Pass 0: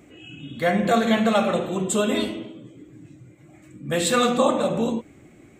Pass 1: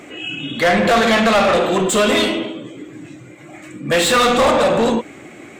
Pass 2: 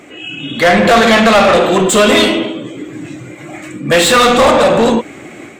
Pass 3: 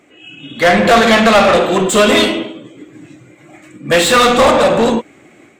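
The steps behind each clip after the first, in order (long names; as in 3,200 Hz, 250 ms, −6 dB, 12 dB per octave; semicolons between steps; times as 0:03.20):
mid-hump overdrive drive 25 dB, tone 4,200 Hz, clips at −6.5 dBFS
automatic gain control gain up to 9.5 dB
expander for the loud parts 1.5 to 1, over −30 dBFS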